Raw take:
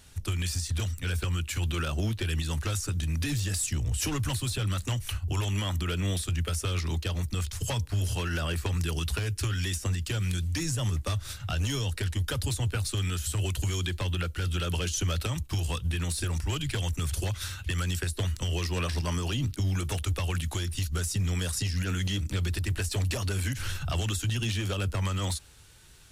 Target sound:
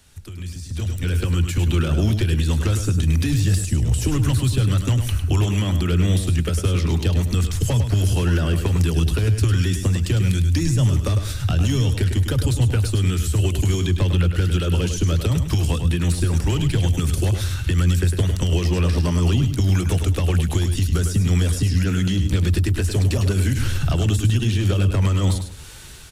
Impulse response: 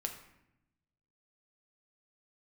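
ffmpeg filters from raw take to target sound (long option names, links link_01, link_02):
-filter_complex "[0:a]acrossover=split=150|450[link_01][link_02][link_03];[link_01]acompressor=threshold=-36dB:ratio=4[link_04];[link_02]acompressor=threshold=-40dB:ratio=4[link_05];[link_03]acompressor=threshold=-49dB:ratio=4[link_06];[link_04][link_05][link_06]amix=inputs=3:normalize=0,aecho=1:1:103|206|309:0.398|0.0995|0.0249,dynaudnorm=framelen=360:gausssize=5:maxgain=16dB"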